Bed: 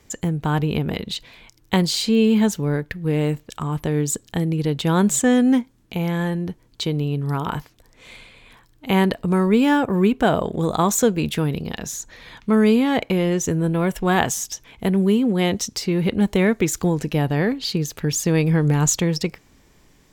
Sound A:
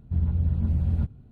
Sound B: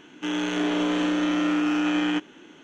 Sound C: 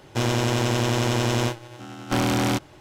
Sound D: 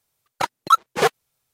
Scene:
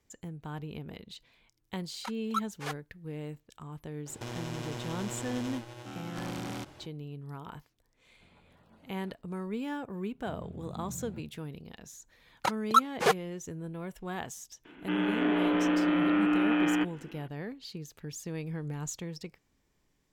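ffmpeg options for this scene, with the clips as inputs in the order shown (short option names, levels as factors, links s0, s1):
-filter_complex "[4:a]asplit=2[s0][s1];[1:a]asplit=2[s2][s3];[0:a]volume=0.112[s4];[s0]highpass=820[s5];[3:a]acompressor=threshold=0.02:ratio=5:attack=4.2:release=33:knee=1:detection=rms[s6];[s2]highpass=680[s7];[s3]highpass=f=130:w=0.5412,highpass=f=130:w=1.3066[s8];[2:a]lowpass=f=2800:w=0.5412,lowpass=f=2800:w=1.3066[s9];[s5]atrim=end=1.53,asetpts=PTS-STARTPTS,volume=0.15,afade=t=in:d=0.004:c=hsin,afade=t=out:st=1.526:d=0.004:c=hsin,adelay=1640[s10];[s6]atrim=end=2.8,asetpts=PTS-STARTPTS,volume=0.631,afade=t=in:d=0.004:c=hsin,afade=t=out:st=2.796:d=0.004:c=hsin,adelay=4060[s11];[s7]atrim=end=1.31,asetpts=PTS-STARTPTS,volume=0.335,afade=t=in:d=0.004:c=hsin,afade=t=out:st=1.306:d=0.004:c=hsin,adelay=8090[s12];[s8]atrim=end=1.31,asetpts=PTS-STARTPTS,volume=0.299,afade=t=in:d=0.004:c=hsin,afade=t=out:st=1.306:d=0.004:c=hsin,adelay=10150[s13];[s1]atrim=end=1.53,asetpts=PTS-STARTPTS,volume=0.473,afade=t=in:d=0.1,afade=t=out:st=1.43:d=0.1,adelay=12040[s14];[s9]atrim=end=2.63,asetpts=PTS-STARTPTS,volume=0.75,afade=t=in:d=0.004:c=hsin,afade=t=out:st=2.626:d=0.004:c=hsin,adelay=14650[s15];[s4][s10][s11][s12][s13][s14][s15]amix=inputs=7:normalize=0"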